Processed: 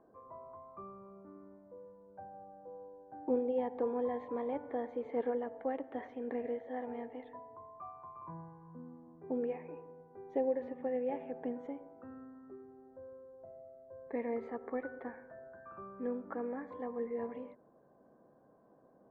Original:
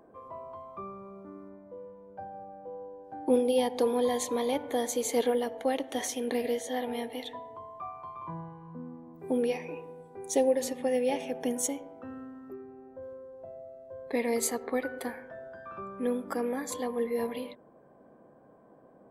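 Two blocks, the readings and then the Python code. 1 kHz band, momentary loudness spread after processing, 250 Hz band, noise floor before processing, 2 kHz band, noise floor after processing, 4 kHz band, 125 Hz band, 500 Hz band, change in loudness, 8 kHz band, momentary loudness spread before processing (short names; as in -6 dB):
-7.5 dB, 18 LU, -7.5 dB, -57 dBFS, -11.5 dB, -65 dBFS, under -25 dB, -7.5 dB, -7.5 dB, -8.5 dB, under -40 dB, 18 LU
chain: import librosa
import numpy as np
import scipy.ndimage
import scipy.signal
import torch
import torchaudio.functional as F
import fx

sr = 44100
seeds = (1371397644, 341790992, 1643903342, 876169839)

y = scipy.signal.sosfilt(scipy.signal.butter(4, 1800.0, 'lowpass', fs=sr, output='sos'), x)
y = F.gain(torch.from_numpy(y), -7.5).numpy()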